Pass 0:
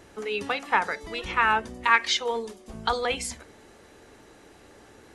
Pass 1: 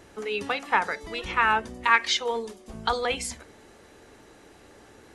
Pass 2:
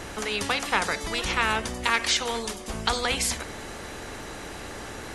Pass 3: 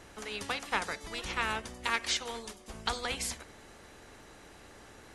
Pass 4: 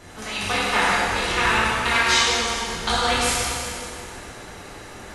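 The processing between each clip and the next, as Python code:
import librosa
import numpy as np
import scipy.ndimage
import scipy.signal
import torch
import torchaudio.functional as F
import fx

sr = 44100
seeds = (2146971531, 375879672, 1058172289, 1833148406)

y1 = x
y2 = fx.low_shelf(y1, sr, hz=93.0, db=12.0)
y2 = fx.spectral_comp(y2, sr, ratio=2.0)
y2 = y2 * librosa.db_to_amplitude(-1.0)
y3 = fx.upward_expand(y2, sr, threshold_db=-38.0, expansion=1.5)
y3 = y3 * librosa.db_to_amplitude(-6.5)
y4 = fx.rev_plate(y3, sr, seeds[0], rt60_s=2.8, hf_ratio=0.8, predelay_ms=0, drr_db=-9.5)
y4 = y4 * librosa.db_to_amplitude(4.5)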